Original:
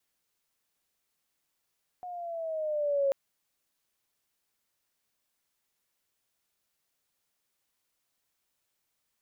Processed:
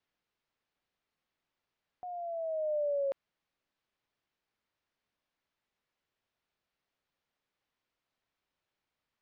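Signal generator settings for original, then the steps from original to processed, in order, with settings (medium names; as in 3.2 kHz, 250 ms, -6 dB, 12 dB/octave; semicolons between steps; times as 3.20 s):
gliding synth tone sine, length 1.09 s, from 727 Hz, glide -5 st, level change +15 dB, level -22.5 dB
peak limiter -27.5 dBFS; distance through air 210 m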